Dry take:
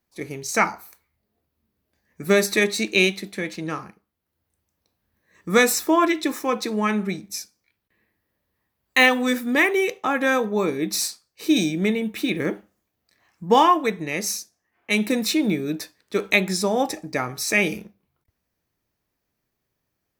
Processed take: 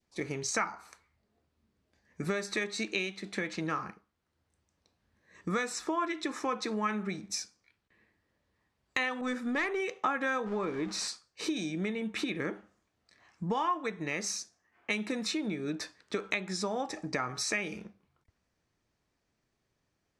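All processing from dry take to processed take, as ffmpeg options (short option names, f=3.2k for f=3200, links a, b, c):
-filter_complex "[0:a]asettb=1/sr,asplit=3[a][b][c];[a]atrim=end=9.214[d];[b]atrim=start=9.21:end=9.8,asetpts=PTS-STARTPTS,afade=t=in:d=0.004:c=qsin,afade=t=out:st=0.586:d=0.004:c=qsin,aeval=exprs='(tanh(3.98*val(0)+0.1)-tanh(0.1))/3.98':c=same,adynamicequalizer=threshold=0.02:dfrequency=1600:dqfactor=0.7:tfrequency=1600:tqfactor=0.7:attack=5:release=100:ratio=0.375:range=2:mode=cutabove:tftype=highshelf[e];[c]atrim=start=9.796[f];[d][e]acrossfade=d=0.004:c1=hsin:c2=qsin[g];[g][f]acrossfade=d=0.004:c1=qsin:c2=hsin,asettb=1/sr,asplit=3[h][i][j];[h]atrim=end=10.464[k];[i]atrim=start=10.46:end=11.08,asetpts=PTS-STARTPTS,afade=t=in:d=0.004:c=qsin,afade=t=out:st=0.616:d=0.004:c=qsin,aeval=exprs='val(0)+0.5*0.0266*sgn(val(0))':c=same,highshelf=f=4.2k:g=-10[l];[j]atrim=start=11.076[m];[k][l]acrossfade=d=0.004:c1=hsin:c2=qsin[n];[n][m]acrossfade=d=0.004:c1=qsin:c2=hsin,lowpass=f=8.3k:w=0.5412,lowpass=f=8.3k:w=1.3066,acompressor=threshold=-31dB:ratio=10,adynamicequalizer=threshold=0.00251:dfrequency=1300:dqfactor=1.3:tfrequency=1300:tqfactor=1.3:attack=5:release=100:ratio=0.375:range=3.5:mode=boostabove:tftype=bell"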